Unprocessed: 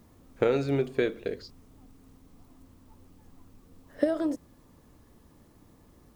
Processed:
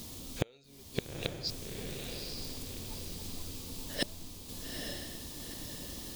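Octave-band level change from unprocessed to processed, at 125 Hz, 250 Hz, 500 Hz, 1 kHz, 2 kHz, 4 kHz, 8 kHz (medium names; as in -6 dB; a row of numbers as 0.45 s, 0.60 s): -3.0 dB, -10.0 dB, -13.5 dB, -7.5 dB, -3.0 dB, +10.0 dB, no reading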